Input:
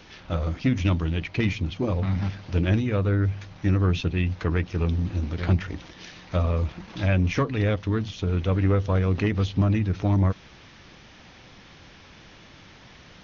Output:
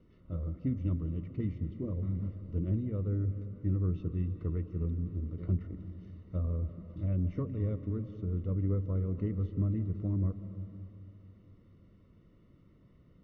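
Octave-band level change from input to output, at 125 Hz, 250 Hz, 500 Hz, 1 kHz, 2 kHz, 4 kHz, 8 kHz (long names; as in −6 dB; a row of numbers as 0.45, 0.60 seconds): −8.5 dB, −9.5 dB, −13.5 dB, −23.0 dB, below −25 dB, below −30 dB, can't be measured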